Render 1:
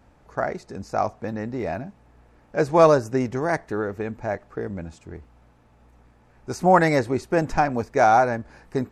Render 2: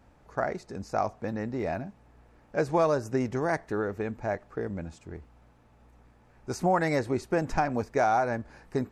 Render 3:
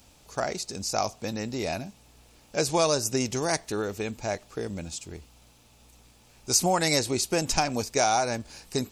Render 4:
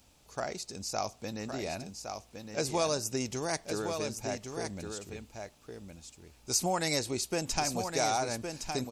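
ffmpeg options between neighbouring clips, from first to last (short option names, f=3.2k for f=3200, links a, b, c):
-af "acompressor=threshold=-19dB:ratio=3,volume=-3dB"
-af "aexciter=amount=7.7:drive=5:freq=2.6k"
-af "aecho=1:1:1113:0.473,volume=-6.5dB"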